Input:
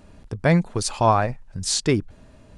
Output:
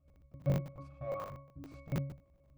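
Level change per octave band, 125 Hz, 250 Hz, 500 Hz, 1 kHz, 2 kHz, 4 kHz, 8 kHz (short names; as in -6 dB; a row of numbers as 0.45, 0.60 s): -13.0, -18.0, -17.5, -25.5, -25.0, -31.5, -35.5 dB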